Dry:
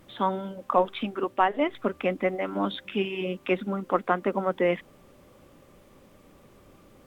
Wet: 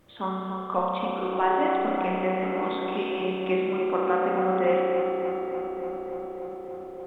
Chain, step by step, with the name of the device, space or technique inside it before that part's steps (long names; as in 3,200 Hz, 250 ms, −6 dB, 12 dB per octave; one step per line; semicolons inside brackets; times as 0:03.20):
dub delay into a spring reverb (feedback echo with a low-pass in the loop 291 ms, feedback 83%, low-pass 2,600 Hz, level −7.5 dB; spring reverb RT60 2.3 s, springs 32 ms, chirp 50 ms, DRR −3 dB)
level −5.5 dB